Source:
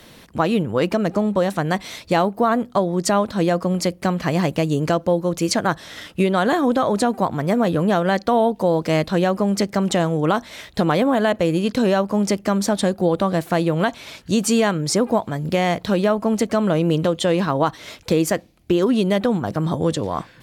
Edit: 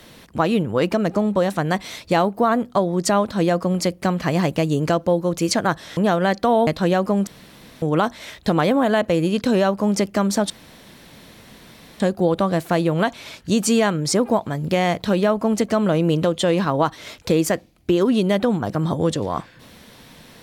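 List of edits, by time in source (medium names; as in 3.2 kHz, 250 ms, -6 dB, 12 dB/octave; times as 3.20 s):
5.97–7.81 s: delete
8.51–8.98 s: delete
9.58–10.13 s: room tone
12.81 s: insert room tone 1.50 s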